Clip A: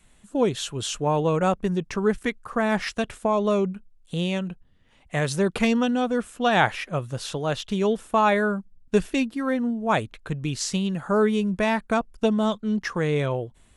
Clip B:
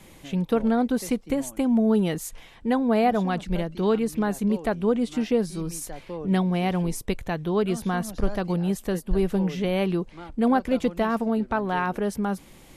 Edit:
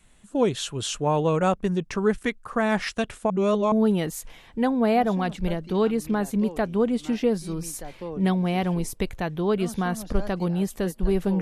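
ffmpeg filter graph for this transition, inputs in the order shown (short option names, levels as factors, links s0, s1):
-filter_complex "[0:a]apad=whole_dur=11.41,atrim=end=11.41,asplit=2[s0][s1];[s0]atrim=end=3.302[s2];[s1]atrim=start=3.298:end=3.722,asetpts=PTS-STARTPTS,areverse[s3];[1:a]atrim=start=1.798:end=9.49[s4];[s2][s3]acrossfade=d=0.004:c1=hsin:c2=hsin[s5];[s5][s4]acrossfade=d=0.004:c1=hsin:c2=hsin"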